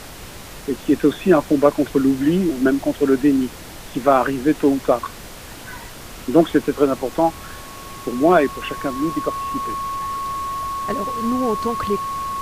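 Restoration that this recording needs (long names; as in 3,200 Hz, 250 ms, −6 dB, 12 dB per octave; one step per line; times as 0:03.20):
notch filter 1,100 Hz, Q 30
broadband denoise 26 dB, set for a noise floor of −37 dBFS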